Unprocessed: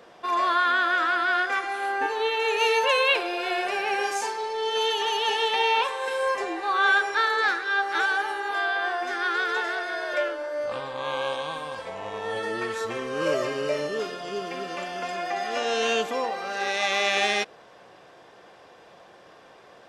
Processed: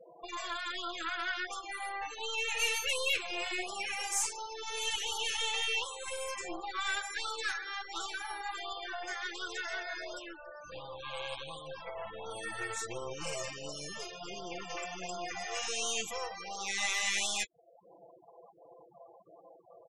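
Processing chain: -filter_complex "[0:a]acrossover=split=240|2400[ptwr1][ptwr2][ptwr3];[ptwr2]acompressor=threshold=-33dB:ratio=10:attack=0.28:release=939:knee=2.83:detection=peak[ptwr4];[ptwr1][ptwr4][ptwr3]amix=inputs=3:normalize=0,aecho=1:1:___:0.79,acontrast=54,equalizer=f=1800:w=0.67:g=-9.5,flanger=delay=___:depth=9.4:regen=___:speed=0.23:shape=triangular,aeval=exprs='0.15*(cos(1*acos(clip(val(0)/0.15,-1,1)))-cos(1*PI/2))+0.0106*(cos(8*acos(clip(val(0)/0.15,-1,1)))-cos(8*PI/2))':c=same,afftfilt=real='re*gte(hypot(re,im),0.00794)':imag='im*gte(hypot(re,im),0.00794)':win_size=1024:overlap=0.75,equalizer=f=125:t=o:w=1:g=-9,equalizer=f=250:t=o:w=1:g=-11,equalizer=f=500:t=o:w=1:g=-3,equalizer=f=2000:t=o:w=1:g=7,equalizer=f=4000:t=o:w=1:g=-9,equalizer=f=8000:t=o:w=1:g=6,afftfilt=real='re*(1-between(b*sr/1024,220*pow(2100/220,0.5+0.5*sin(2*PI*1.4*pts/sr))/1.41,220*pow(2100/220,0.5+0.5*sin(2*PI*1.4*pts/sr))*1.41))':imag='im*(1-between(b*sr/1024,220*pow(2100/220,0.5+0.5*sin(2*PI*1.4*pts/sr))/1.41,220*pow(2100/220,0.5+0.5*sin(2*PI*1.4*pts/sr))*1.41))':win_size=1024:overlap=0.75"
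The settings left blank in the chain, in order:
6, 7.6, 69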